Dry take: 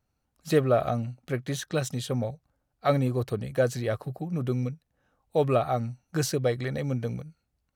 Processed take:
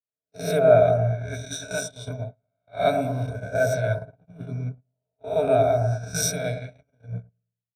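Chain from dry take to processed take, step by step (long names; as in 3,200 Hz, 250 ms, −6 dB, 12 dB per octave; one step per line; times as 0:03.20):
peak hold with a rise ahead of every peak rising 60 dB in 1.17 s
EQ curve with evenly spaced ripples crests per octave 1.6, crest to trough 18 dB
low-pass that shuts in the quiet parts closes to 2,400 Hz, open at −16 dBFS
flanger 0.31 Hz, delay 1.1 ms, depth 2.3 ms, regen −78%
delay with a low-pass on its return 111 ms, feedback 60%, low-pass 1,100 Hz, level −4 dB
noise gate −25 dBFS, range −33 dB
comb filter 1.4 ms, depth 74%
multiband upward and downward expander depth 70%
level −3.5 dB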